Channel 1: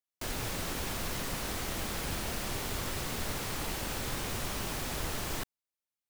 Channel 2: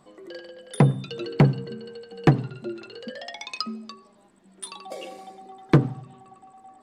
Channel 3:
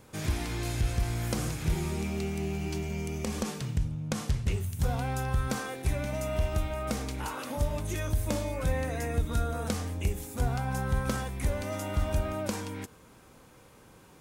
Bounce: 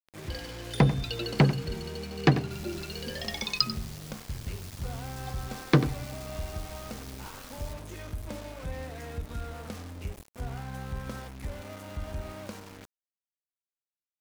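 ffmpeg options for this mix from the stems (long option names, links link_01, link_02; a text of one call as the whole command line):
ffmpeg -i stem1.wav -i stem2.wav -i stem3.wav -filter_complex "[0:a]acrossover=split=190|3000[link_01][link_02][link_03];[link_02]acompressor=threshold=-42dB:ratio=6[link_04];[link_01][link_04][link_03]amix=inputs=3:normalize=0,aeval=exprs='val(0)*sin(2*PI*46*n/s)':channel_layout=same,adelay=2300,volume=-8.5dB[link_05];[1:a]lowpass=5200,highshelf=frequency=2000:gain=10,volume=-4.5dB,asplit=3[link_06][link_07][link_08];[link_06]atrim=end=3.89,asetpts=PTS-STARTPTS,afade=type=out:start_time=3.886:duration=0.004:curve=hsin[link_09];[link_07]atrim=start=3.89:end=5.25,asetpts=PTS-STARTPTS,volume=0[link_10];[link_08]atrim=start=5.25,asetpts=PTS-STARTPTS,afade=type=in:duration=0.004:curve=hsin[link_11];[link_09][link_10][link_11]concat=n=3:v=0:a=1,asplit=2[link_12][link_13];[link_13]volume=-13dB[link_14];[2:a]bass=frequency=250:gain=0,treble=frequency=4000:gain=-7,volume=-8dB,asplit=2[link_15][link_16];[link_16]volume=-15dB[link_17];[link_14][link_17]amix=inputs=2:normalize=0,aecho=0:1:92:1[link_18];[link_05][link_12][link_15][link_18]amix=inputs=4:normalize=0,aeval=exprs='val(0)*gte(abs(val(0)),0.0075)':channel_layout=same,adynamicequalizer=threshold=0.00224:dfrequency=4900:dqfactor=1.6:tfrequency=4900:tqfactor=1.6:attack=5:release=100:ratio=0.375:range=2:mode=boostabove:tftype=bell" out.wav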